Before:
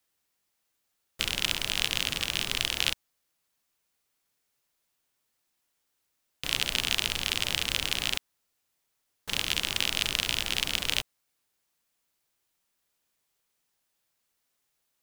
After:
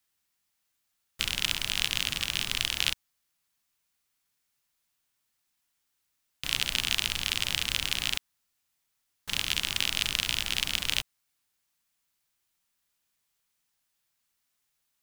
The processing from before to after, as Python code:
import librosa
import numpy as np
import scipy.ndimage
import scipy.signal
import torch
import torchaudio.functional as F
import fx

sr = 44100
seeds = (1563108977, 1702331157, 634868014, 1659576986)

y = fx.peak_eq(x, sr, hz=470.0, db=-7.5, octaves=1.5)